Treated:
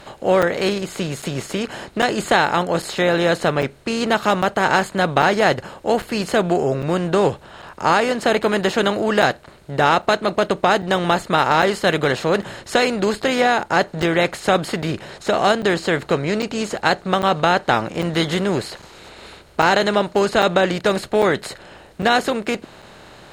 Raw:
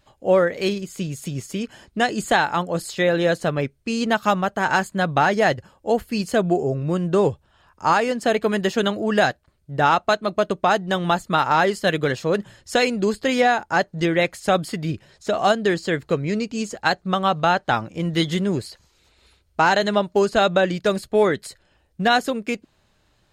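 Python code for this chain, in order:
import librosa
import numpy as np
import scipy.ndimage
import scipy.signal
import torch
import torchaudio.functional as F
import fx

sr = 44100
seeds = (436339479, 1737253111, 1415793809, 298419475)

y = fx.bin_compress(x, sr, power=0.6)
y = fx.buffer_crackle(y, sr, first_s=0.42, period_s=0.8, block=256, kind='zero')
y = F.gain(torch.from_numpy(y), -1.5).numpy()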